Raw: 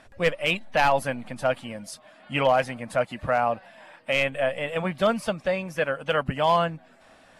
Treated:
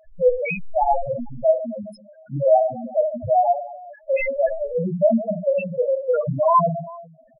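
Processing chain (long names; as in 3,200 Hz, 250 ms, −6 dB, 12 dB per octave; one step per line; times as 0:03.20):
reverse bouncing-ball delay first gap 30 ms, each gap 1.5×, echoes 5
spectral peaks only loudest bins 2
level +8 dB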